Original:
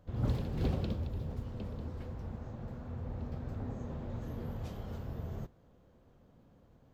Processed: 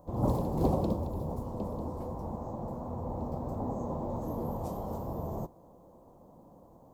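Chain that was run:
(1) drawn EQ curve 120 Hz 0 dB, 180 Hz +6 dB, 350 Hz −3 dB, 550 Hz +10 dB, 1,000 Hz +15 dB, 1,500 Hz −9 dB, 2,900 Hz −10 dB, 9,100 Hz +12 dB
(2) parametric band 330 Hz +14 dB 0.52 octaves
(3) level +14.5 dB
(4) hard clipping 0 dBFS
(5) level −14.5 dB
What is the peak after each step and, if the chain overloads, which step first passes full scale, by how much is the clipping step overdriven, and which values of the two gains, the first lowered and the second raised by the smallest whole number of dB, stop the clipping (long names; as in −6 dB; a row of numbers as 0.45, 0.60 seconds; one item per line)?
−18.5, −16.0, −1.5, −1.5, −16.0 dBFS
no step passes full scale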